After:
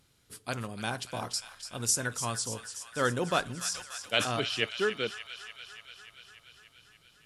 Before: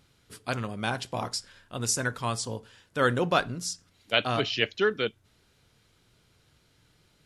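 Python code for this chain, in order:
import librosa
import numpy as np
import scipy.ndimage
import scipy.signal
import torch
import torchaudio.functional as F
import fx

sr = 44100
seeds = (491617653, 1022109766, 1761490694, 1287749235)

y = fx.peak_eq(x, sr, hz=11000.0, db=7.5, octaves=1.5)
y = fx.echo_wet_highpass(y, sr, ms=291, feedback_pct=71, hz=1500.0, wet_db=-9.5)
y = fx.sustainer(y, sr, db_per_s=100.0, at=(3.6, 4.42))
y = y * librosa.db_to_amplitude(-4.5)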